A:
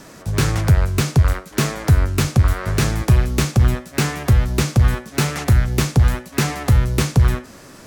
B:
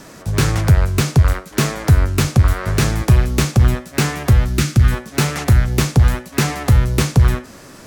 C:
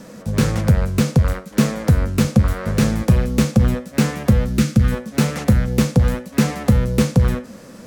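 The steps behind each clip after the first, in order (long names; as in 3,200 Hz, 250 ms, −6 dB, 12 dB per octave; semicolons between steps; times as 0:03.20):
gain on a spectral selection 0:04.49–0:04.92, 370–1,200 Hz −8 dB; level +2 dB
hollow resonant body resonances 210/500 Hz, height 14 dB, ringing for 60 ms; level −5 dB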